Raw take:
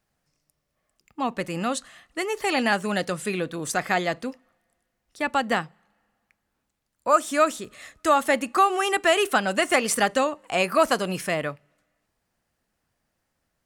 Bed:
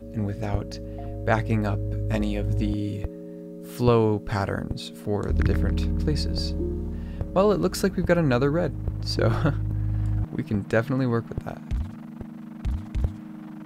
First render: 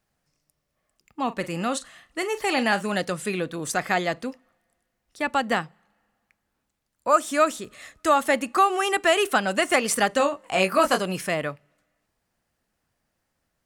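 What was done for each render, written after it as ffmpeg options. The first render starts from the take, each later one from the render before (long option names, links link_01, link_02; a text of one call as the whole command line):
ffmpeg -i in.wav -filter_complex "[0:a]asettb=1/sr,asplit=3[link_01][link_02][link_03];[link_01]atrim=end=1.224[link_04];[link_02]atrim=start=1.22:end=2.95,asetpts=PTS-STARTPTS,afade=type=in:duration=0.004:curve=qsin,afade=type=out:start_time=1.726:duration=0.004:curve=qsin,asplit=2[link_05][link_06];[link_06]adelay=41,volume=-13.5dB[link_07];[link_05][link_07]amix=inputs=2:normalize=0,atrim=end_sample=76293[link_08];[link_03]atrim=start=2.946[link_09];[link_04][link_08]acrossfade=duration=0.004:curve1=hsin:curve2=qsin[link_10];[link_10][link_09]acrossfade=duration=0.004:curve1=qsin:curve2=hsin,asettb=1/sr,asplit=3[link_11][link_12][link_13];[link_11]atrim=end=10.184[link_14];[link_12]atrim=start=10.18:end=11,asetpts=PTS-STARTPTS,afade=type=in:duration=0.004:curve=qsin,afade=type=out:start_time=0.816:duration=0.004:curve=qsin,asplit=2[link_15][link_16];[link_16]adelay=21,volume=-5dB[link_17];[link_15][link_17]amix=inputs=2:normalize=0,atrim=end_sample=36162[link_18];[link_13]atrim=start=10.996[link_19];[link_14][link_18]acrossfade=duration=0.004:curve1=hsin:curve2=qsin[link_20];[link_20][link_19]acrossfade=duration=0.004:curve1=qsin:curve2=hsin" out.wav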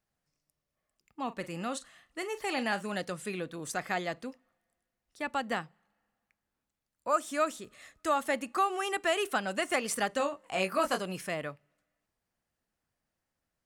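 ffmpeg -i in.wav -af "volume=-9dB" out.wav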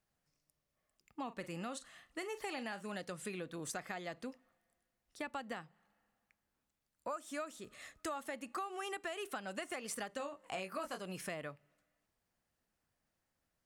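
ffmpeg -i in.wav -af "alimiter=limit=-20dB:level=0:latency=1:release=379,acompressor=threshold=-40dB:ratio=4" out.wav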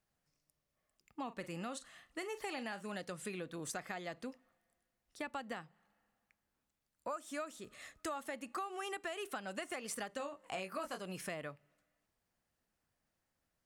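ffmpeg -i in.wav -af anull out.wav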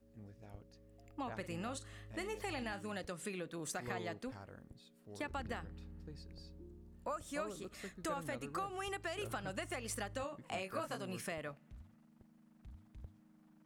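ffmpeg -i in.wav -i bed.wav -filter_complex "[1:a]volume=-27dB[link_01];[0:a][link_01]amix=inputs=2:normalize=0" out.wav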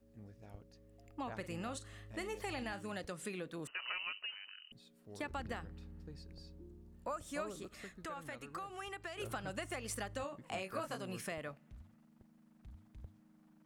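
ffmpeg -i in.wav -filter_complex "[0:a]asettb=1/sr,asplit=3[link_01][link_02][link_03];[link_01]atrim=end=3.674[link_04];[link_02]atrim=start=3.67:end=4.72,asetpts=PTS-STARTPTS,afade=type=in:duration=0.004:curve=qsin,afade=type=out:start_time=1.046:duration=0.004:curve=qsin,lowpass=frequency=2600:width_type=q:width=0.5098,lowpass=frequency=2600:width_type=q:width=0.6013,lowpass=frequency=2600:width_type=q:width=0.9,lowpass=frequency=2600:width_type=q:width=2.563,afreqshift=-3100[link_05];[link_03]atrim=start=4.716[link_06];[link_04][link_05]acrossfade=duration=0.004:curve1=hsin:curve2=qsin[link_07];[link_07][link_06]acrossfade=duration=0.004:curve1=qsin:curve2=hsin,asettb=1/sr,asplit=3[link_08][link_09][link_10];[link_08]atrim=end=7.654[link_11];[link_09]atrim=start=7.65:end=9.2,asetpts=PTS-STARTPTS,afade=type=in:duration=0.004:curve=qsin,afade=type=out:start_time=1.546:duration=0.004:curve=qsin,acrossover=split=870|3400[link_12][link_13][link_14];[link_12]acompressor=threshold=-49dB:ratio=4[link_15];[link_13]acompressor=threshold=-44dB:ratio=4[link_16];[link_14]acompressor=threshold=-59dB:ratio=4[link_17];[link_15][link_16][link_17]amix=inputs=3:normalize=0[link_18];[link_10]atrim=start=9.196[link_19];[link_11][link_18]acrossfade=duration=0.004:curve1=hsin:curve2=qsin[link_20];[link_20][link_19]acrossfade=duration=0.004:curve1=qsin:curve2=hsin" out.wav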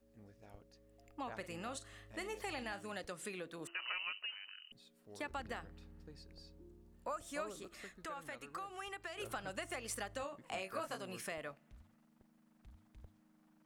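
ffmpeg -i in.wav -af "equalizer=frequency=110:width=0.49:gain=-7.5,bandreject=frequency=339.5:width_type=h:width=4,bandreject=frequency=679:width_type=h:width=4" out.wav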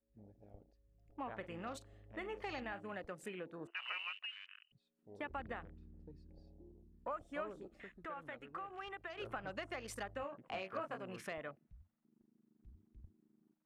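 ffmpeg -i in.wav -af "afwtdn=0.002,highshelf=frequency=5800:gain=-11" out.wav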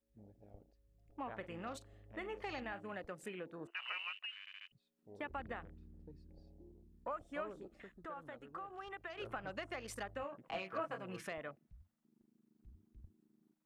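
ffmpeg -i in.wav -filter_complex "[0:a]asettb=1/sr,asplit=3[link_01][link_02][link_03];[link_01]atrim=end=7.824[link_04];[link_02]atrim=start=7.82:end=8.91,asetpts=PTS-STARTPTS,afade=type=in:duration=0.004:curve=qsin,afade=type=out:start_time=1.086:duration=0.004:curve=qsin,equalizer=frequency=2300:width_type=o:width=0.78:gain=-9[link_05];[link_03]atrim=start=8.906[link_06];[link_04][link_05]acrossfade=duration=0.004:curve1=hsin:curve2=qsin[link_07];[link_07][link_06]acrossfade=duration=0.004:curve1=qsin:curve2=hsin,asettb=1/sr,asplit=3[link_08][link_09][link_10];[link_08]atrim=end=10.484[link_11];[link_09]atrim=start=10.48:end=11.28,asetpts=PTS-STARTPTS,afade=type=in:duration=0.004:curve=qsin,afade=type=out:start_time=0.796:duration=0.004:curve=qsin,aecho=1:1:6.1:0.53,atrim=end_sample=35280[link_12];[link_10]atrim=start=11.276[link_13];[link_11][link_12]acrossfade=duration=0.004:curve1=hsin:curve2=qsin[link_14];[link_14][link_13]acrossfade=duration=0.004:curve1=qsin:curve2=hsin,asplit=5[link_15][link_16][link_17][link_18][link_19];[link_15]atrim=end=4.472[link_20];[link_16]atrim=start=4.398:end=4.472[link_21];[link_17]atrim=start=4.398:end=4.472[link_22];[link_18]atrim=start=4.398:end=4.472[link_23];[link_19]atrim=start=4.678[link_24];[link_20][link_21]acrossfade=duration=0.004:curve1=hsin:curve2=hsin[link_25];[link_25][link_22]acrossfade=duration=0.004:curve1=hsin:curve2=hsin[link_26];[link_26][link_23]acrossfade=duration=0.004:curve1=hsin:curve2=hsin[link_27];[link_27][link_24]acrossfade=duration=0.004:curve1=hsin:curve2=hsin" out.wav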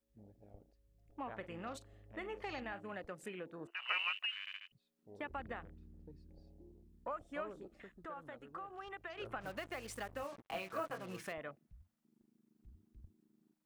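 ffmpeg -i in.wav -filter_complex "[0:a]asettb=1/sr,asplit=3[link_01][link_02][link_03];[link_01]atrim=end=3.894[link_04];[link_02]atrim=start=3.89:end=4.57,asetpts=PTS-STARTPTS,afade=type=in:duration=0.004:curve=qsin,afade=type=out:start_time=0.676:duration=0.004:curve=qsin,acontrast=72[link_05];[link_03]atrim=start=4.566[link_06];[link_04][link_05]acrossfade=duration=0.004:curve1=hsin:curve2=qsin[link_07];[link_07][link_06]acrossfade=duration=0.004:curve1=qsin:curve2=hsin,asplit=3[link_08][link_09][link_10];[link_08]afade=type=out:start_time=9.4:duration=0.02[link_11];[link_09]acrusher=bits=8:mix=0:aa=0.5,afade=type=in:start_time=9.4:duration=0.02,afade=type=out:start_time=11.31:duration=0.02[link_12];[link_10]afade=type=in:start_time=11.31:duration=0.02[link_13];[link_11][link_12][link_13]amix=inputs=3:normalize=0" out.wav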